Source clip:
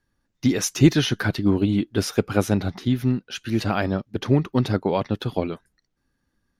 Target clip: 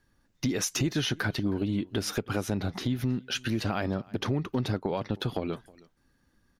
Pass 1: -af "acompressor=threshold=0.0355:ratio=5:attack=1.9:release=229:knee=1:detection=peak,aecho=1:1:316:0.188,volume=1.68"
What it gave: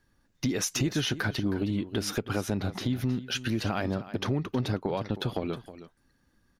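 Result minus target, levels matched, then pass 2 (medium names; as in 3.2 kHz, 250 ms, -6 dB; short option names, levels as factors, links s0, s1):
echo-to-direct +9.5 dB
-af "acompressor=threshold=0.0355:ratio=5:attack=1.9:release=229:knee=1:detection=peak,aecho=1:1:316:0.0631,volume=1.68"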